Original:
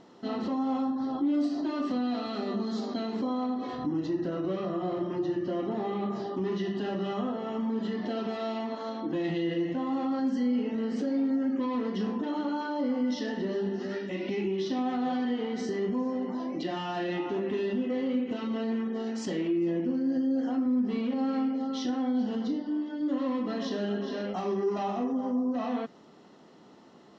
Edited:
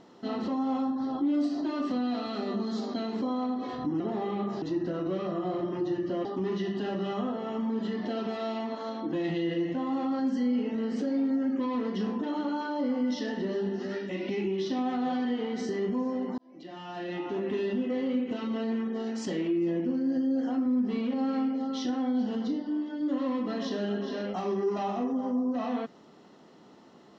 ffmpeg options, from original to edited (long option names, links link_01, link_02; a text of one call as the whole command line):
ffmpeg -i in.wav -filter_complex "[0:a]asplit=5[link_01][link_02][link_03][link_04][link_05];[link_01]atrim=end=4.002[link_06];[link_02]atrim=start=5.628:end=6.252[link_07];[link_03]atrim=start=3.998:end=5.632[link_08];[link_04]atrim=start=6.248:end=16.38,asetpts=PTS-STARTPTS,afade=type=out:start_time=10.128:duration=0.004:curve=hsin[link_09];[link_05]atrim=start=16.38,asetpts=PTS-STARTPTS,afade=type=in:duration=1.12[link_10];[link_06][link_07]acrossfade=duration=0.004:curve1=hsin:curve2=hsin[link_11];[link_11][link_08]acrossfade=duration=0.004:curve1=hsin:curve2=hsin[link_12];[link_09][link_10]concat=n=2:v=0:a=1[link_13];[link_12][link_13]acrossfade=duration=0.004:curve1=hsin:curve2=hsin" out.wav